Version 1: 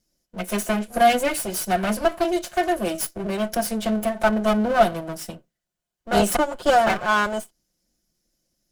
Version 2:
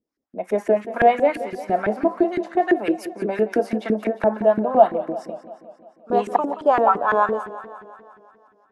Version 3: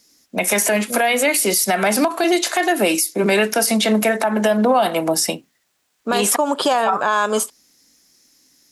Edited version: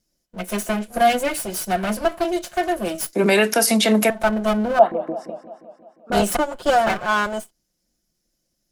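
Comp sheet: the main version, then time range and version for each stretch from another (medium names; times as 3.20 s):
1
3.13–4.10 s: from 3
4.79–6.12 s: from 2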